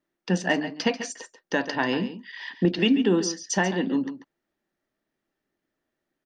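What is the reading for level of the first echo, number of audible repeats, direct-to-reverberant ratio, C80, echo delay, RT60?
-12.0 dB, 1, no reverb, no reverb, 139 ms, no reverb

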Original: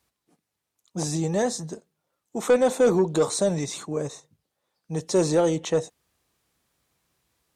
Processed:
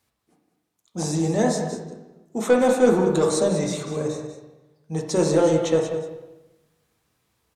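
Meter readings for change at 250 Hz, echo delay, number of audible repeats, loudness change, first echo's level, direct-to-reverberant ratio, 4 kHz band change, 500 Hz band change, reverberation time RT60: +4.0 dB, 192 ms, 1, +2.5 dB, -10.5 dB, 0.5 dB, +1.0 dB, +2.5 dB, 1.0 s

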